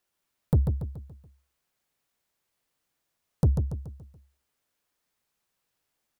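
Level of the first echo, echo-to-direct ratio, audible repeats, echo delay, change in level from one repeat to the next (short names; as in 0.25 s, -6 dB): -6.0 dB, -5.0 dB, 5, 0.142 s, -7.0 dB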